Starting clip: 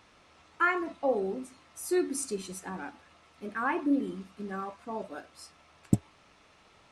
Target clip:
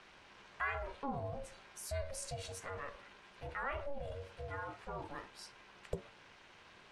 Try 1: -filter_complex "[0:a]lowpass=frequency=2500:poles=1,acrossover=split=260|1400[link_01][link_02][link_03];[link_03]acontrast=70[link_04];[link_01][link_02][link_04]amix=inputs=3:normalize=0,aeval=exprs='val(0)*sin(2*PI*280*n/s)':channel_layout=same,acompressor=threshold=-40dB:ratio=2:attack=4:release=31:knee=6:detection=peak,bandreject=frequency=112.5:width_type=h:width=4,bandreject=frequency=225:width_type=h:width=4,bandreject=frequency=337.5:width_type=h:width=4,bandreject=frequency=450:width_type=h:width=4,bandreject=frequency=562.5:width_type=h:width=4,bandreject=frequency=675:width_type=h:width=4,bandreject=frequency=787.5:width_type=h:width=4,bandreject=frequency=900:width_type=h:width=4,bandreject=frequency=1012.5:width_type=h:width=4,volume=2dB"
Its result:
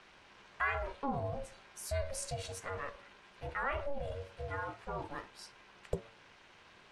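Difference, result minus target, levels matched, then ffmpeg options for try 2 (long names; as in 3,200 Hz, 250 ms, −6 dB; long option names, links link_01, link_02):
downward compressor: peak gain reduction −4 dB
-filter_complex "[0:a]lowpass=frequency=2500:poles=1,acrossover=split=260|1400[link_01][link_02][link_03];[link_03]acontrast=70[link_04];[link_01][link_02][link_04]amix=inputs=3:normalize=0,aeval=exprs='val(0)*sin(2*PI*280*n/s)':channel_layout=same,acompressor=threshold=-48dB:ratio=2:attack=4:release=31:knee=6:detection=peak,bandreject=frequency=112.5:width_type=h:width=4,bandreject=frequency=225:width_type=h:width=4,bandreject=frequency=337.5:width_type=h:width=4,bandreject=frequency=450:width_type=h:width=4,bandreject=frequency=562.5:width_type=h:width=4,bandreject=frequency=675:width_type=h:width=4,bandreject=frequency=787.5:width_type=h:width=4,bandreject=frequency=900:width_type=h:width=4,bandreject=frequency=1012.5:width_type=h:width=4,volume=2dB"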